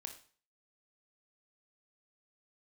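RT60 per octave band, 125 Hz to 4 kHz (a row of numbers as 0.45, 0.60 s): 0.45, 0.45, 0.40, 0.45, 0.45, 0.40 s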